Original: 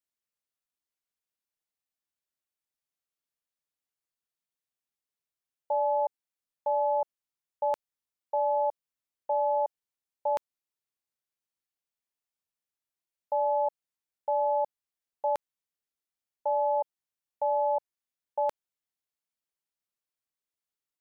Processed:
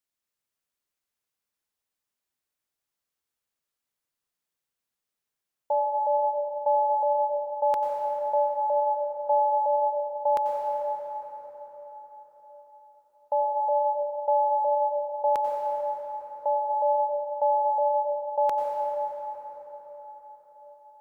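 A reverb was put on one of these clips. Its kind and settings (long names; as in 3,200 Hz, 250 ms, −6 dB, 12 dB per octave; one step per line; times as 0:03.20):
dense smooth reverb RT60 4.9 s, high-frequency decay 0.5×, pre-delay 80 ms, DRR 0.5 dB
level +3 dB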